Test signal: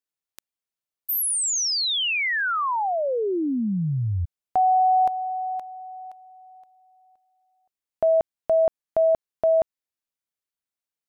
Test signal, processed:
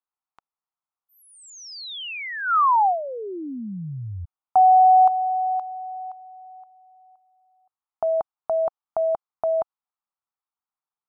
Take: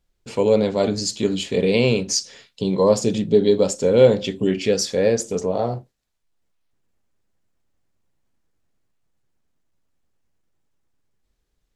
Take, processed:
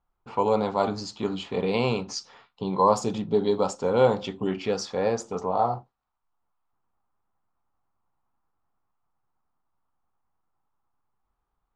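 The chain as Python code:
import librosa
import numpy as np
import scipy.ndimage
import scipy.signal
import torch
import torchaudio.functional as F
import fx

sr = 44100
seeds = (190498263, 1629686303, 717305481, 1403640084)

y = fx.band_shelf(x, sr, hz=1000.0, db=14.5, octaves=1.1)
y = fx.env_lowpass(y, sr, base_hz=2400.0, full_db=-8.5)
y = F.gain(torch.from_numpy(y), -7.5).numpy()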